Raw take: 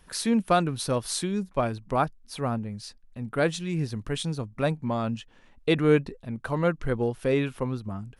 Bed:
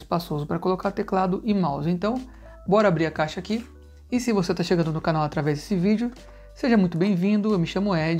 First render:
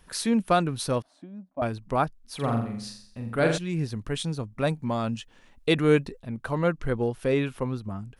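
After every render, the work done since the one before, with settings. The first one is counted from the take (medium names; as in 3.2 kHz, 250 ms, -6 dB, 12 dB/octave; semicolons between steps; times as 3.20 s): 1.02–1.62 s: two resonant band-passes 420 Hz, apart 1.2 oct; 2.35–3.58 s: flutter echo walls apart 7.4 m, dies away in 0.59 s; 4.67–6.20 s: treble shelf 4 kHz +7 dB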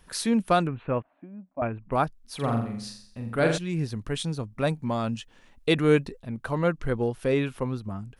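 0.67–1.92 s: elliptic low-pass 2.6 kHz, stop band 50 dB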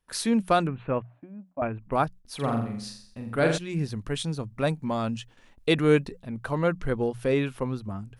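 hum notches 60/120/180 Hz; gate with hold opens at -45 dBFS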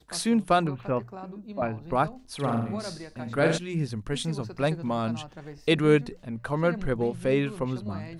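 add bed -18.5 dB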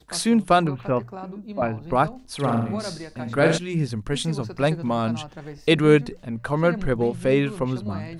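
trim +4.5 dB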